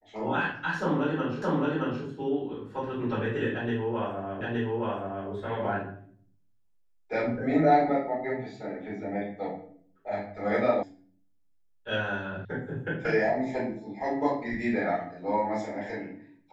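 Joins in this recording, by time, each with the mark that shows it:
1.42 s: repeat of the last 0.62 s
4.41 s: repeat of the last 0.87 s
10.83 s: sound stops dead
12.45 s: sound stops dead

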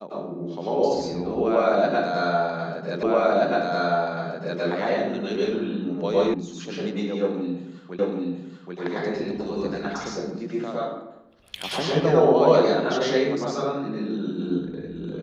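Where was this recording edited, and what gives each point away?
3.03 s: repeat of the last 1.58 s
6.34 s: sound stops dead
7.99 s: repeat of the last 0.78 s

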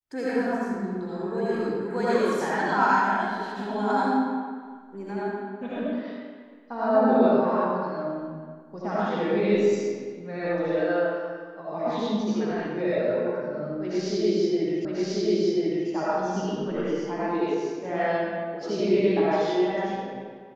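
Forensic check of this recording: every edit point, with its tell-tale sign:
14.85 s: repeat of the last 1.04 s

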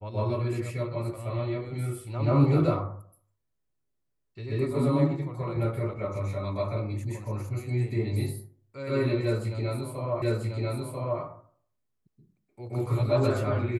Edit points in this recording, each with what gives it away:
10.22 s: repeat of the last 0.99 s

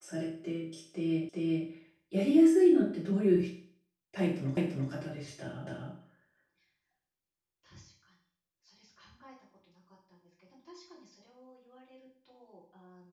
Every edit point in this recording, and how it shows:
1.29 s: repeat of the last 0.39 s
4.57 s: repeat of the last 0.34 s
5.67 s: repeat of the last 0.25 s

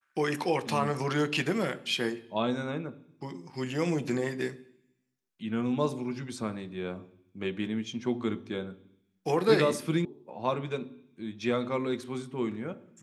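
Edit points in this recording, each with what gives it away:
10.05 s: sound stops dead

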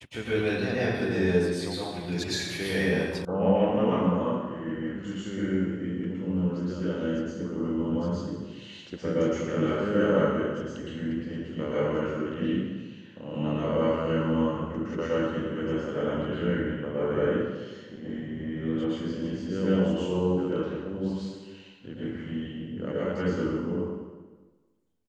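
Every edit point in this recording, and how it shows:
3.25 s: sound stops dead

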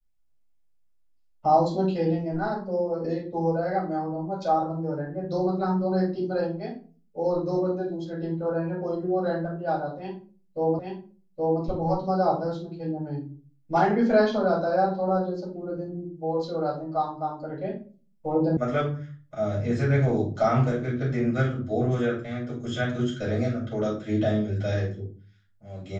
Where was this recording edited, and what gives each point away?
10.79 s: repeat of the last 0.82 s
18.57 s: sound stops dead

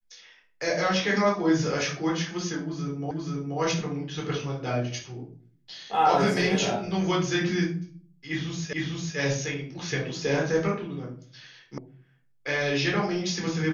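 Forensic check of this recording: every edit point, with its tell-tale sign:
3.11 s: repeat of the last 0.48 s
8.73 s: repeat of the last 0.45 s
11.78 s: sound stops dead

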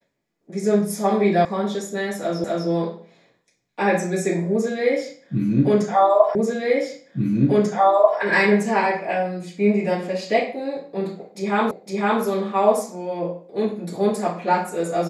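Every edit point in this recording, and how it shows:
1.45 s: sound stops dead
2.44 s: repeat of the last 0.25 s
6.35 s: repeat of the last 1.84 s
11.71 s: repeat of the last 0.51 s

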